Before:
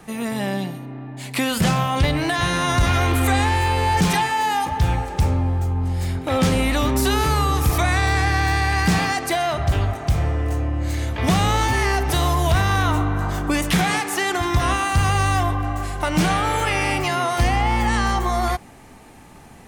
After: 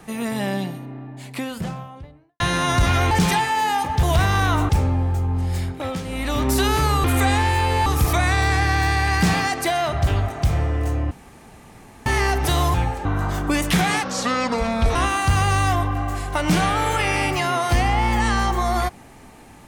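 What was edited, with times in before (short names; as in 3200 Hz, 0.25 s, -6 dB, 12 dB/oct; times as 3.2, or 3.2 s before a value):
0.54–2.4 studio fade out
3.11–3.93 move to 7.51
4.85–5.16 swap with 12.39–13.05
6.03–6.97 dip -12.5 dB, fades 0.45 s
10.76–11.71 room tone
14.03–14.63 speed 65%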